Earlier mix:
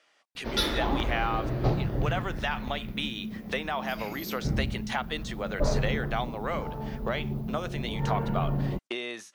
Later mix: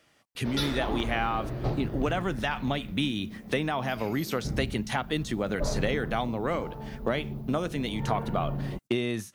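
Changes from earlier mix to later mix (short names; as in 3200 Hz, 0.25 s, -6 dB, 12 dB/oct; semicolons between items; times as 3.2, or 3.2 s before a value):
speech: remove BPF 540–6900 Hz; background -4.0 dB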